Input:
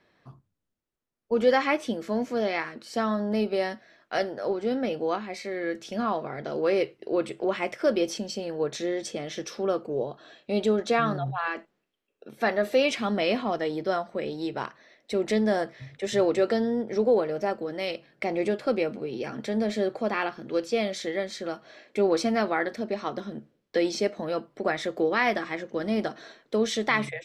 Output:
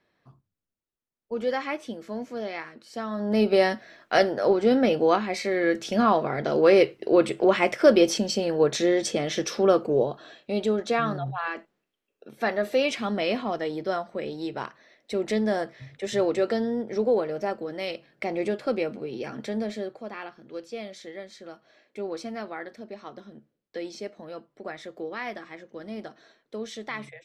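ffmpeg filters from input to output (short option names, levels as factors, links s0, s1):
-af "volume=2.24,afade=t=in:st=3.11:d=0.43:silence=0.223872,afade=t=out:st=9.92:d=0.63:silence=0.398107,afade=t=out:st=19.44:d=0.54:silence=0.354813"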